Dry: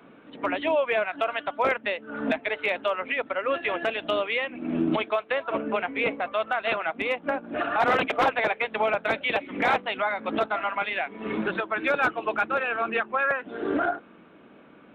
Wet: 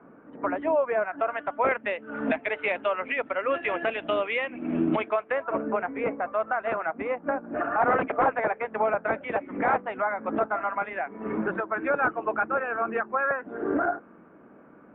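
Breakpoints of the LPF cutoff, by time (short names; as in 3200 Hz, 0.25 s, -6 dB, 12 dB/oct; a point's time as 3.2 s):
LPF 24 dB/oct
0.97 s 1600 Hz
2.08 s 2700 Hz
4.84 s 2700 Hz
5.67 s 1700 Hz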